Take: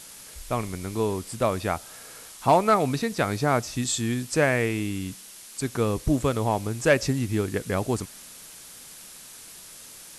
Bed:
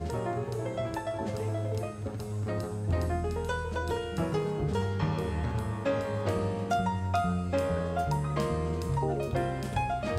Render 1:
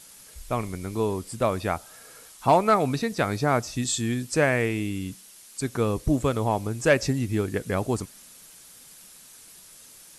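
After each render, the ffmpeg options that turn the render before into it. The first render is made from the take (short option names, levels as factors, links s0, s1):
-af "afftdn=nr=6:nf=-45"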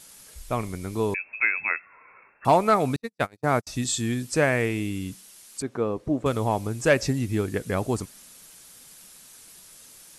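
-filter_complex "[0:a]asettb=1/sr,asplit=3[s0][s1][s2];[s0]atrim=end=1.144[s3];[s1]atrim=start=1.14:end=2.45,asetpts=PTS-STARTPTS,afade=t=in:d=0.004:c=qsin,afade=t=out:st=1.306:d=0.004:c=qsin,lowpass=f=2300:t=q:w=0.5098,lowpass=f=2300:t=q:w=0.6013,lowpass=f=2300:t=q:w=0.9,lowpass=f=2300:t=q:w=2.563,afreqshift=-2700[s4];[s2]atrim=start=2.446[s5];[s3][s4]acrossfade=d=0.004:c1=hsin:c2=qsin[s6];[s6][s5]acrossfade=d=0.004:c1=qsin:c2=hsin,asettb=1/sr,asplit=3[s7][s8][s9];[s7]atrim=end=2.964[s10];[s8]atrim=start=2.96:end=3.67,asetpts=PTS-STARTPTS,afade=t=in:d=0.004:c=qsin,afade=t=out:st=0.706:d=0.004:c=qsin,agate=range=0.00316:threshold=0.0631:ratio=16:release=100:detection=peak[s11];[s9]atrim=start=3.666[s12];[s10][s11]acrossfade=d=0.004:c1=hsin:c2=qsin[s13];[s13][s12]acrossfade=d=0.004:c1=qsin:c2=hsin,asettb=1/sr,asplit=3[s14][s15][s16];[s14]atrim=end=5.624[s17];[s15]atrim=start=5.62:end=6.26,asetpts=PTS-STARTPTS,afade=t=in:d=0.004:c=qsin,afade=t=out:st=0.636:d=0.004:c=qsin,bandpass=f=530:t=q:w=0.53[s18];[s16]atrim=start=6.256[s19];[s17][s18]acrossfade=d=0.004:c1=hsin:c2=qsin[s20];[s20][s19]acrossfade=d=0.004:c1=qsin:c2=hsin"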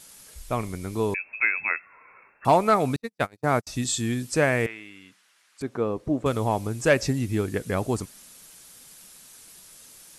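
-filter_complex "[0:a]asettb=1/sr,asplit=3[s0][s1][s2];[s0]atrim=end=4.664[s3];[s1]atrim=start=4.66:end=5.61,asetpts=PTS-STARTPTS,afade=t=in:d=0.004:c=qsin,afade=t=out:st=0.946:d=0.004:c=qsin,bandpass=f=1600:t=q:w=1.4[s4];[s2]atrim=start=5.606[s5];[s3][s4]acrossfade=d=0.004:c1=hsin:c2=qsin[s6];[s6][s5]acrossfade=d=0.004:c1=qsin:c2=hsin"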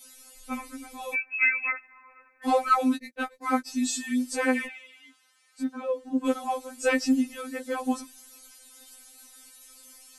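-af "afftfilt=real='re*3.46*eq(mod(b,12),0)':imag='im*3.46*eq(mod(b,12),0)':win_size=2048:overlap=0.75"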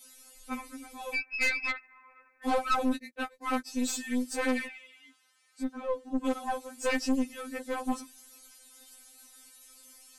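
-af "aeval=exprs='(tanh(12.6*val(0)+0.65)-tanh(0.65))/12.6':c=same"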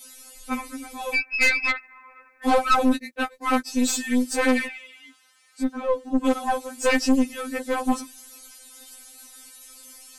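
-af "volume=2.66"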